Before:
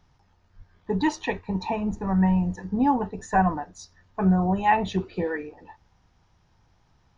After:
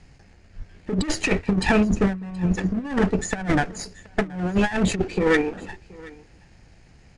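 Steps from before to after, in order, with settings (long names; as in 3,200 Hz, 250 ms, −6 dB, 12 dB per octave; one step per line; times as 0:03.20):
lower of the sound and its delayed copy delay 0.42 ms
graphic EQ with 15 bands 100 Hz −5 dB, 1,000 Hz −4 dB, 4,000 Hz −3 dB
compressor whose output falls as the input rises −29 dBFS, ratio −0.5
on a send: single-tap delay 726 ms −22.5 dB
on the sum: downsampling to 22,050 Hz
level +8.5 dB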